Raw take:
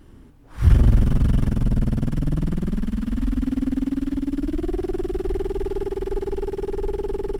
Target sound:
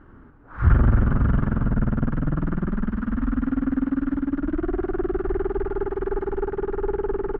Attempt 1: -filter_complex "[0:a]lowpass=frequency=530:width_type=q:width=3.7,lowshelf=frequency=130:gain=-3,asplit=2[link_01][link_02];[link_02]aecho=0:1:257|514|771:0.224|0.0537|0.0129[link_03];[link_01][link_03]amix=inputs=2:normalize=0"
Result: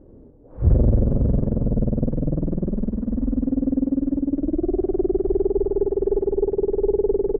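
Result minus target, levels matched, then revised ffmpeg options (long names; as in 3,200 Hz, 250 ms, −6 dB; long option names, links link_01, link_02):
1,000 Hz band −11.5 dB
-filter_complex "[0:a]lowpass=frequency=1400:width_type=q:width=3.7,lowshelf=frequency=130:gain=-3,asplit=2[link_01][link_02];[link_02]aecho=0:1:257|514|771:0.224|0.0537|0.0129[link_03];[link_01][link_03]amix=inputs=2:normalize=0"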